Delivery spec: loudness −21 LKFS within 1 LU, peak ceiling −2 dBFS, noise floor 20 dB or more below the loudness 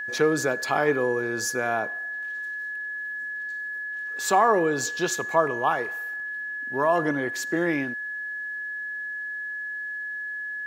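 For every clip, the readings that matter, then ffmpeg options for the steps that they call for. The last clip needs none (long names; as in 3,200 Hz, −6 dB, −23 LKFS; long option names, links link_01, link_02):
interfering tone 1,700 Hz; level of the tone −30 dBFS; integrated loudness −26.5 LKFS; sample peak −8.0 dBFS; target loudness −21.0 LKFS
→ -af "bandreject=frequency=1700:width=30"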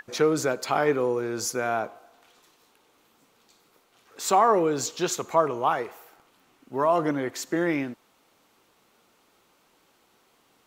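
interfering tone none found; integrated loudness −25.5 LKFS; sample peak −8.0 dBFS; target loudness −21.0 LKFS
→ -af "volume=4.5dB"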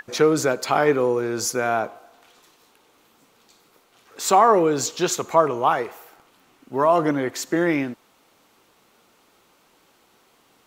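integrated loudness −21.0 LKFS; sample peak −3.5 dBFS; background noise floor −60 dBFS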